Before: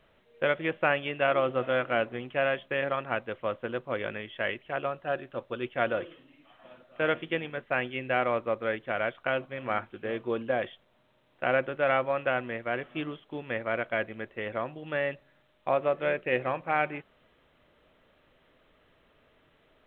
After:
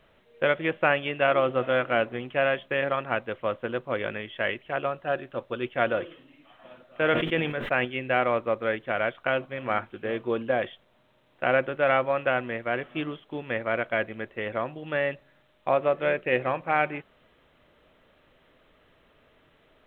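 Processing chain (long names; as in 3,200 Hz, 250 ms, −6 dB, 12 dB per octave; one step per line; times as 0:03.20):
0:07.01–0:07.85: level that may fall only so fast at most 50 dB per second
level +3 dB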